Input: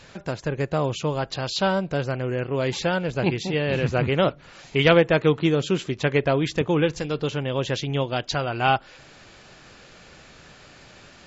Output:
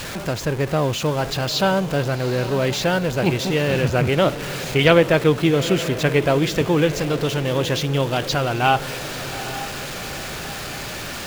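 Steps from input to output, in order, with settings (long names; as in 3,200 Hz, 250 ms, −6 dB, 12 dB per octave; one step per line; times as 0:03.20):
converter with a step at zero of −28.5 dBFS
feedback delay with all-pass diffusion 842 ms, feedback 46%, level −12.5 dB
level +2 dB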